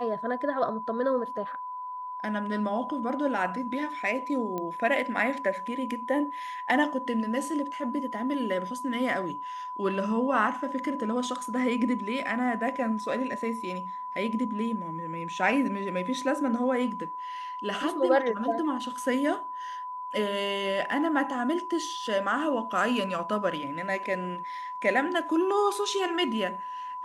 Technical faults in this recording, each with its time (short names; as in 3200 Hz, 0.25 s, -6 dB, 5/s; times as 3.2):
tone 1000 Hz -34 dBFS
4.58 pop -20 dBFS